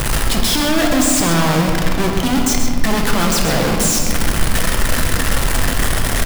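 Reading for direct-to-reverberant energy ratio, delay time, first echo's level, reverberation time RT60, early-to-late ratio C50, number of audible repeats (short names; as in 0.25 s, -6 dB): 0.5 dB, 0.131 s, -7.5 dB, 2.5 s, 2.0 dB, 1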